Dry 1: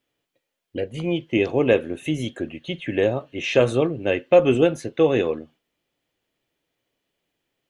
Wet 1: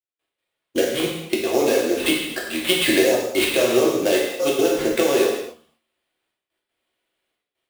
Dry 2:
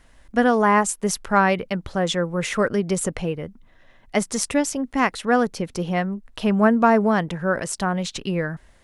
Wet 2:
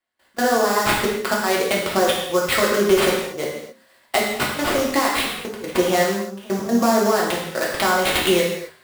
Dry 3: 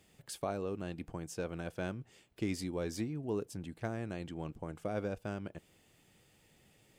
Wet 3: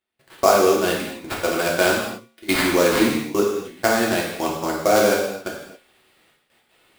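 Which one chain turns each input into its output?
frequency weighting A; gate -48 dBFS, range -15 dB; dynamic bell 490 Hz, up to +4 dB, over -34 dBFS, Q 0.71; peak limiter -14 dBFS; compression, threshold -31 dBFS; wow and flutter 19 cents; trance gate "..x.xxxxxxx" 157 bpm -24 dB; feedback comb 76 Hz, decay 0.49 s, harmonics odd, mix 60%; sample-rate reducer 6.3 kHz, jitter 20%; gated-style reverb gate 300 ms falling, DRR -3.5 dB; normalise loudness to -20 LUFS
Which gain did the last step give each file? +18.0 dB, +18.5 dB, +26.5 dB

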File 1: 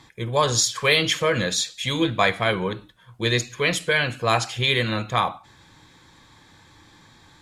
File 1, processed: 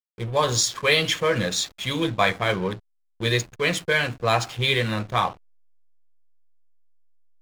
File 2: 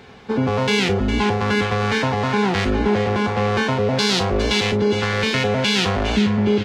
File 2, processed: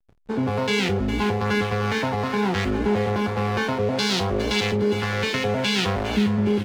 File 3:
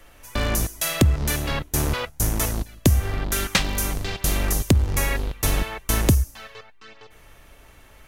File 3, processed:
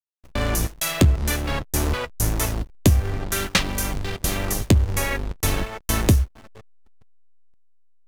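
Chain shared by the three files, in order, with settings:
flange 0.65 Hz, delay 9.6 ms, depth 1.9 ms, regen -55%; hysteresis with a dead band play -33.5 dBFS; normalise loudness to -23 LUFS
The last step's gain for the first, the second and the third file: +3.5 dB, +0.5 dB, +5.0 dB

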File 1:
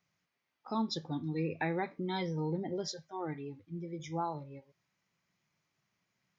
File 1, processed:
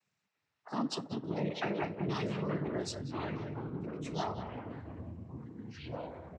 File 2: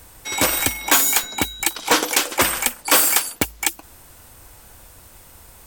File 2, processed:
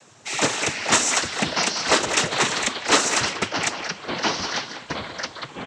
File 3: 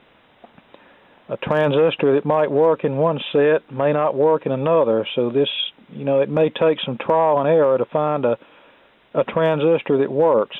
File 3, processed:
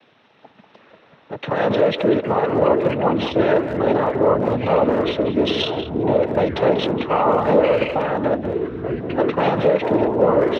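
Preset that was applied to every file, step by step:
noise-vocoded speech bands 12; ever faster or slower copies 337 ms, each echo -5 st, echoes 3, each echo -6 dB; speakerphone echo 190 ms, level -9 dB; trim -1 dB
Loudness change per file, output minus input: -1.0 LU, -4.0 LU, 0.0 LU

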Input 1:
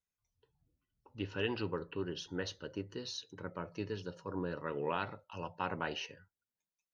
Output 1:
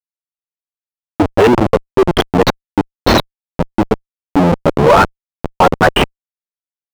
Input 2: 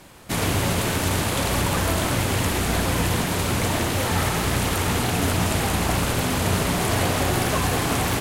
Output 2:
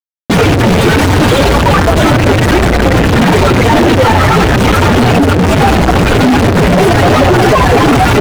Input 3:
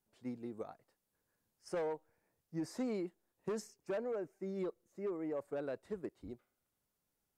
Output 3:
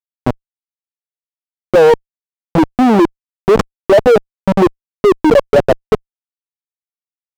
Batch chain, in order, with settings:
expander on every frequency bin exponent 3; Schmitt trigger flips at -45.5 dBFS; overdrive pedal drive 31 dB, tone 1 kHz, clips at -30.5 dBFS; peak normalisation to -2 dBFS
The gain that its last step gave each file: +33.5 dB, +28.5 dB, +33.5 dB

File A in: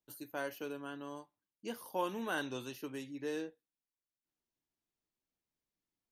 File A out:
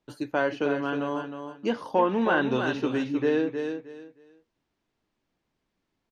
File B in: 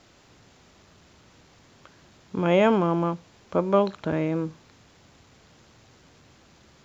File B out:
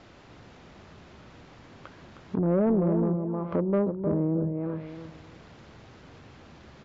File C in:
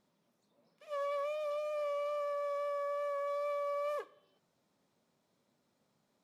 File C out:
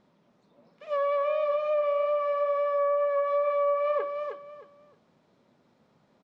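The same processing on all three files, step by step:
distance through air 97 m; on a send: feedback delay 312 ms, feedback 23%, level -8 dB; on the sum: low-pass that closes with the level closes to 450 Hz, closed at -25.5 dBFS; in parallel at -1 dB: compression, threshold -37 dBFS; on the sum: treble shelf 3.7 kHz -7 dB; saturation -17 dBFS; normalise loudness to -27 LUFS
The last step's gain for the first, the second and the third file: +11.0 dB, +0.5 dB, +6.5 dB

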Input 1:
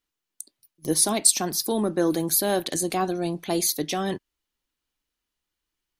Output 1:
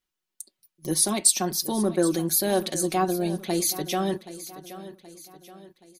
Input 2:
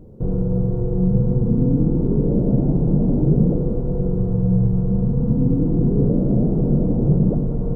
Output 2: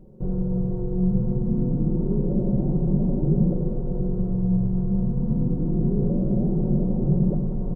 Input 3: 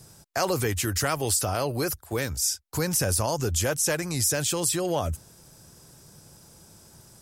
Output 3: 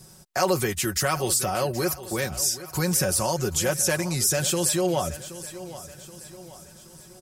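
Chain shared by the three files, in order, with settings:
comb 5.4 ms, depth 62%; feedback delay 775 ms, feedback 46%, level -15 dB; normalise loudness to -24 LUFS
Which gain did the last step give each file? -2.5 dB, -7.0 dB, 0.0 dB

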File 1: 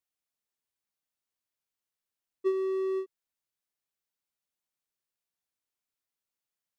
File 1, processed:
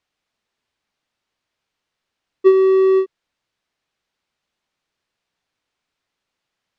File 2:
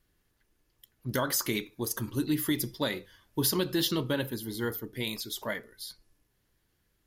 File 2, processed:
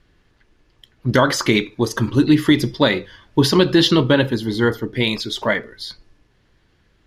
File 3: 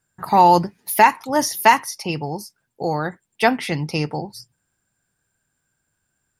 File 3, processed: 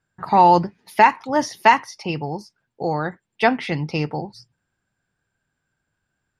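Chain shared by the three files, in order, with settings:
low-pass 4.2 kHz 12 dB/octave; peak normalisation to -2 dBFS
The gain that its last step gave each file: +16.5 dB, +15.0 dB, -0.5 dB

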